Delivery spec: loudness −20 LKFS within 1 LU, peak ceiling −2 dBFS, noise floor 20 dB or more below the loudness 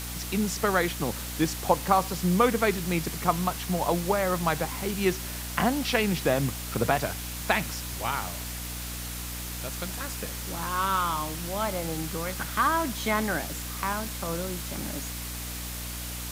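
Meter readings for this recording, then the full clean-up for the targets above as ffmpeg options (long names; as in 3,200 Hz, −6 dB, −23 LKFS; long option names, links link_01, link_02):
mains hum 60 Hz; hum harmonics up to 300 Hz; level of the hum −36 dBFS; background noise floor −36 dBFS; target noise floor −49 dBFS; integrated loudness −28.5 LKFS; sample peak −7.0 dBFS; target loudness −20.0 LKFS
→ -af "bandreject=frequency=60:width_type=h:width=6,bandreject=frequency=120:width_type=h:width=6,bandreject=frequency=180:width_type=h:width=6,bandreject=frequency=240:width_type=h:width=6,bandreject=frequency=300:width_type=h:width=6"
-af "afftdn=noise_reduction=13:noise_floor=-36"
-af "volume=8.5dB,alimiter=limit=-2dB:level=0:latency=1"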